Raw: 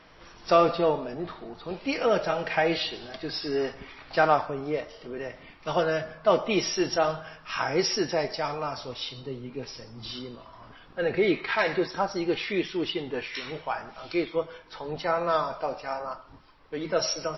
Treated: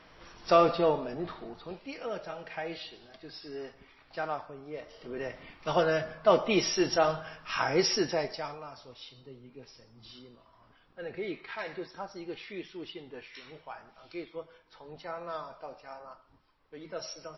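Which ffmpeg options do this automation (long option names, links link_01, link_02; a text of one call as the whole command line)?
ffmpeg -i in.wav -af "volume=10dB,afade=type=out:start_time=1.45:duration=0.43:silence=0.281838,afade=type=in:start_time=4.71:duration=0.52:silence=0.251189,afade=type=out:start_time=7.94:duration=0.7:silence=0.251189" out.wav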